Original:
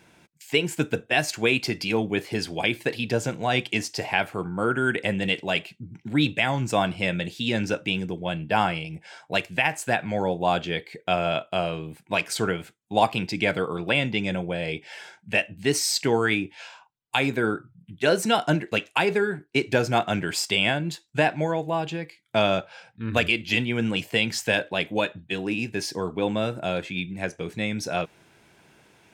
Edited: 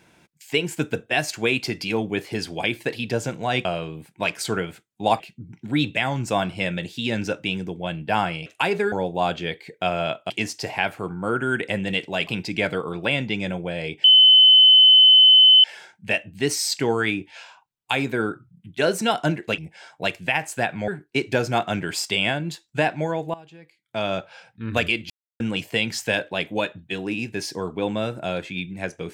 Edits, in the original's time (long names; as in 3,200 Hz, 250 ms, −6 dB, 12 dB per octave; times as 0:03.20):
0:03.65–0:05.62: swap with 0:11.56–0:13.11
0:08.88–0:10.18: swap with 0:18.82–0:19.28
0:14.88: insert tone 3,040 Hz −8.5 dBFS 1.60 s
0:21.74–0:22.68: fade in quadratic, from −18 dB
0:23.50–0:23.80: silence